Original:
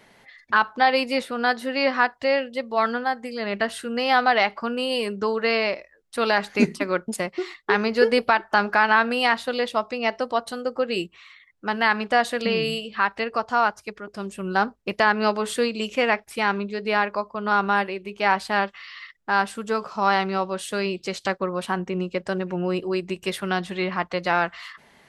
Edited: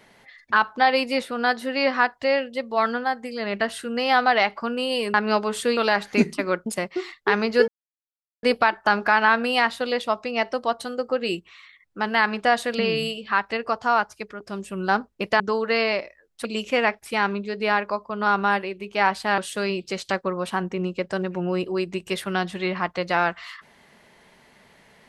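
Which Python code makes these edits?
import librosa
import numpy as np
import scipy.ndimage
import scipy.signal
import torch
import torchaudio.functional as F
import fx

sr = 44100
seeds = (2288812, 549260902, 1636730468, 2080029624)

y = fx.edit(x, sr, fx.swap(start_s=5.14, length_s=1.05, other_s=15.07, other_length_s=0.63),
    fx.insert_silence(at_s=8.1, length_s=0.75),
    fx.cut(start_s=18.63, length_s=1.91), tone=tone)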